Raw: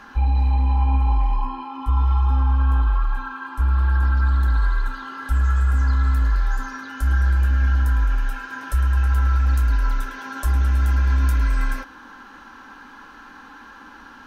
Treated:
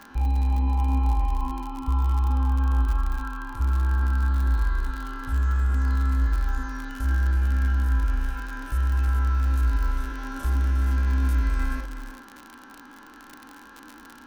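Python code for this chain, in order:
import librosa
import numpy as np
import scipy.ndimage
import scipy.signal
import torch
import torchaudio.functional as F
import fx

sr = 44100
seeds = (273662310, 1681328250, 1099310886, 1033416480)

y = fx.spec_steps(x, sr, hold_ms=50)
y = fx.peak_eq(y, sr, hz=310.0, db=6.5, octaves=1.2)
y = y + 10.0 ** (-11.0 / 20.0) * np.pad(y, (int(356 * sr / 1000.0), 0))[:len(y)]
y = fx.dmg_crackle(y, sr, seeds[0], per_s=58.0, level_db=-25.0)
y = y * librosa.db_to_amplitude(-4.5)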